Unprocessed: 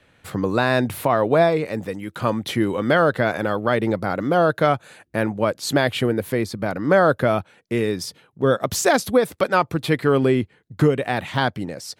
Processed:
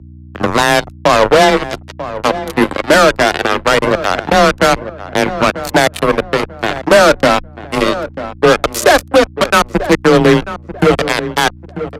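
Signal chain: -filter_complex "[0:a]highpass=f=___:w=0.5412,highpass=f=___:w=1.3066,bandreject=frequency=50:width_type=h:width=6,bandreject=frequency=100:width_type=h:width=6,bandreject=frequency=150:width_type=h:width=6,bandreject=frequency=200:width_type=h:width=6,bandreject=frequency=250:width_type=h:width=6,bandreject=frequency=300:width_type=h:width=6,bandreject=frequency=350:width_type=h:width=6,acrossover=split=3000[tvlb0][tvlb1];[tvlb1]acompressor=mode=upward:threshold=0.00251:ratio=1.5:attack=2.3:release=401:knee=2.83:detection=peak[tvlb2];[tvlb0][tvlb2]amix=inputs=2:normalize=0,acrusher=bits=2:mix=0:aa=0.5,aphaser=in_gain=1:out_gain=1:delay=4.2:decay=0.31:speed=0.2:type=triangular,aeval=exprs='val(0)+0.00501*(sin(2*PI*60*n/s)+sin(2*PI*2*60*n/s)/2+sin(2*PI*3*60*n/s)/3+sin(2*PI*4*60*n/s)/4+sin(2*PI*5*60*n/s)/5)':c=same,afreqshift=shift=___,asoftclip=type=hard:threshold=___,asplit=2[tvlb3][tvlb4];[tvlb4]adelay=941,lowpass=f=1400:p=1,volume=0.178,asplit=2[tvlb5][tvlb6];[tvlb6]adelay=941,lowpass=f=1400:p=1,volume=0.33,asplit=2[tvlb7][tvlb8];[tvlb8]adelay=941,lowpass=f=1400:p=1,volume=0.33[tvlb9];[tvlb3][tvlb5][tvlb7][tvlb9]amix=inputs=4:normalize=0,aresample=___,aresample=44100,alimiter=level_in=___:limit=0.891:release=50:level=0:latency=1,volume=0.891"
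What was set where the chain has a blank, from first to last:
150, 150, 20, 0.266, 32000, 4.73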